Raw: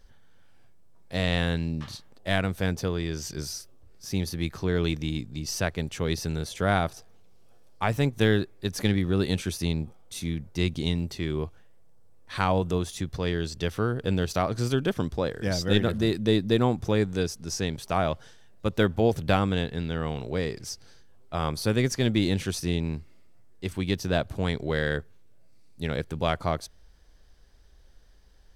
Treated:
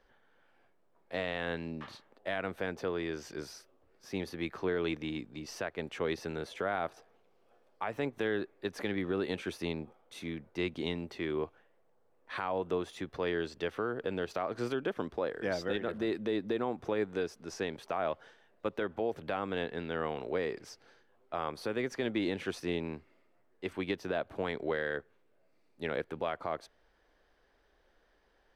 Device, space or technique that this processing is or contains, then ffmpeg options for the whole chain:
DJ mixer with the lows and highs turned down: -filter_complex "[0:a]acrossover=split=270 2900:gain=0.112 1 0.141[a][b][c];[a][b][c]amix=inputs=3:normalize=0,alimiter=limit=-22dB:level=0:latency=1:release=169"

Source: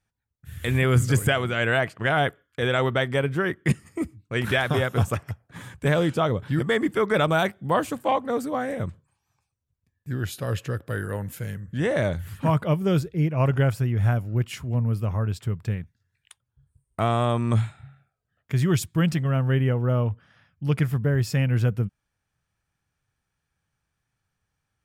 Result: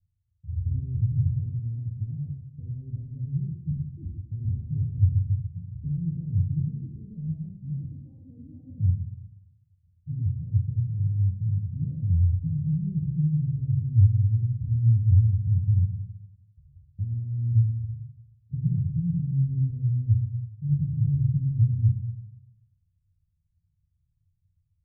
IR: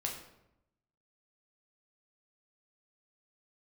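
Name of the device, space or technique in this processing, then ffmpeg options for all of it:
club heard from the street: -filter_complex "[0:a]alimiter=limit=-20.5dB:level=0:latency=1:release=60,lowpass=f=130:w=0.5412,lowpass=f=130:w=1.3066[a];[1:a]atrim=start_sample=2205[b];[a][b]afir=irnorm=-1:irlink=0,volume=7.5dB"

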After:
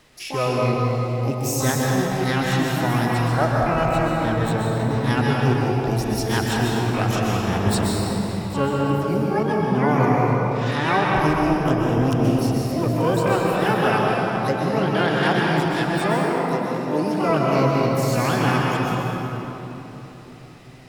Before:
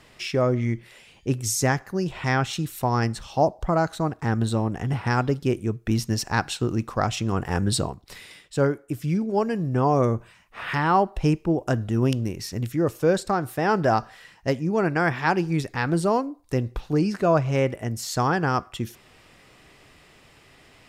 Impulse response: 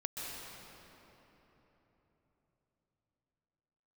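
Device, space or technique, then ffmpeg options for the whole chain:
shimmer-style reverb: -filter_complex "[0:a]asettb=1/sr,asplit=3[a][b][c];[a]atrim=end=15.704[d];[b]atrim=start=15.7:end=17.3,asetpts=PTS-STARTPTS,afade=t=in:d=0.004:c=qsin,afade=t=out:st=1.596:d=0.004:c=qsin,highpass=f=180:w=0.5412,highpass=f=180:w=1.3066[e];[c]atrim=start=17.296[f];[d][e]acrossfade=d=0.004:c1=hsin:c2=qsin[g];[g][f]acrossfade=d=0.004:c1=qsin:c2=hsin,asplit=2[h][i];[i]asetrate=88200,aresample=44100,atempo=0.5,volume=-5dB[j];[h][j]amix=inputs=2:normalize=0[k];[1:a]atrim=start_sample=2205[l];[k][l]afir=irnorm=-1:irlink=0"

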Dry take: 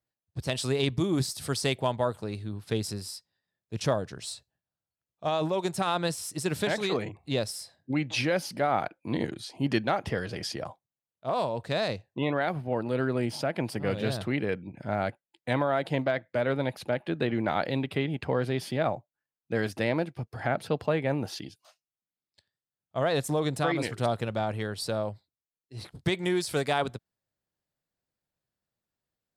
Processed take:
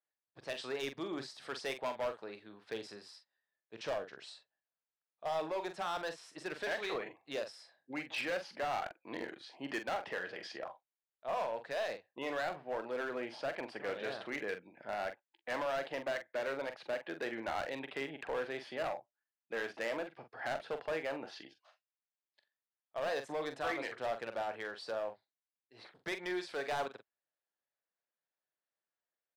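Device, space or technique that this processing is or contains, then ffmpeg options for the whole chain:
megaphone: -filter_complex "[0:a]highpass=490,lowpass=3.1k,equalizer=f=1.7k:t=o:w=0.32:g=4,asoftclip=type=hard:threshold=-27dB,asplit=2[a][b];[b]adelay=44,volume=-9dB[c];[a][c]amix=inputs=2:normalize=0,volume=-5dB"

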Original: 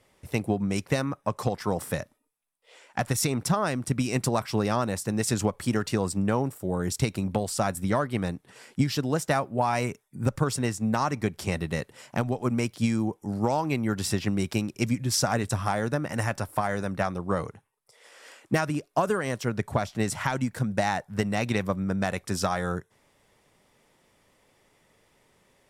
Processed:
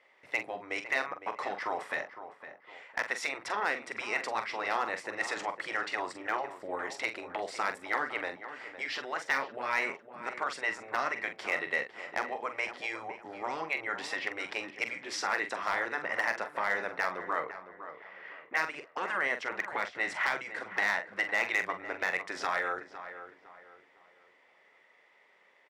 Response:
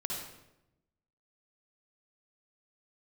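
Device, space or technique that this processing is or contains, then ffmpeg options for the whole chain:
megaphone: -filter_complex "[0:a]asettb=1/sr,asplit=3[a][b][c];[a]atrim=end=17.404[d];[b]atrim=start=17.4:end=18.57,asetpts=PTS-STARTPTS,afade=t=in:d=0.004:c=qsin,afade=t=out:st=1.166:d=0.004:c=qsin,lowpass=2.5k[e];[c]atrim=start=18.566[f];[d][e]acrossfade=d=0.004:c1=hsin:c2=qsin[g];[g][f]acrossfade=d=0.004:c1=qsin:c2=hsin,afftfilt=real='re*lt(hypot(re,im),0.251)':imag='im*lt(hypot(re,im),0.251)':win_size=1024:overlap=0.75,highpass=560,lowpass=3.1k,equalizer=f=2k:t=o:w=0.36:g=9,asoftclip=type=hard:threshold=-20dB,asplit=2[h][i];[i]adelay=44,volume=-9dB[j];[h][j]amix=inputs=2:normalize=0,asplit=2[k][l];[l]adelay=508,lowpass=f=1.8k:p=1,volume=-11dB,asplit=2[m][n];[n]adelay=508,lowpass=f=1.8k:p=1,volume=0.37,asplit=2[o][p];[p]adelay=508,lowpass=f=1.8k:p=1,volume=0.37,asplit=2[q][r];[r]adelay=508,lowpass=f=1.8k:p=1,volume=0.37[s];[k][m][o][q][s]amix=inputs=5:normalize=0"

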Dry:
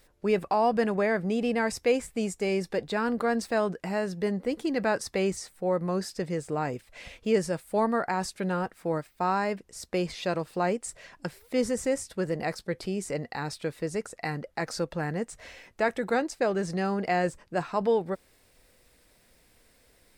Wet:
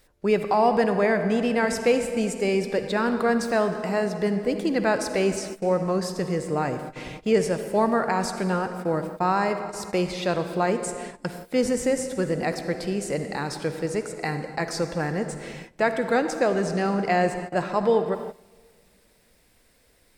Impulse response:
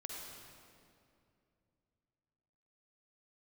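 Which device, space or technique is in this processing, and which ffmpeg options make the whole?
keyed gated reverb: -filter_complex "[0:a]asplit=3[a][b][c];[1:a]atrim=start_sample=2205[d];[b][d]afir=irnorm=-1:irlink=0[e];[c]apad=whole_len=889689[f];[e][f]sidechaingate=range=-18dB:threshold=-49dB:ratio=16:detection=peak,volume=0dB[g];[a][g]amix=inputs=2:normalize=0"

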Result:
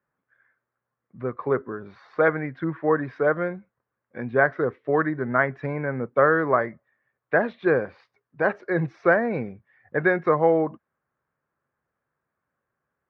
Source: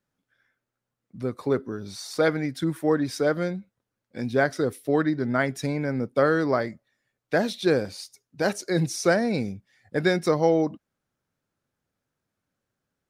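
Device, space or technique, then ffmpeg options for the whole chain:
bass cabinet: -af "highpass=64,equalizer=f=100:t=q:w=4:g=-9,equalizer=f=190:t=q:w=4:g=-7,equalizer=f=280:t=q:w=4:g=-7,equalizer=f=1.1k:t=q:w=4:g=7,equalizer=f=1.7k:t=q:w=4:g=4,lowpass=f=2.1k:w=0.5412,lowpass=f=2.1k:w=1.3066,volume=2dB"

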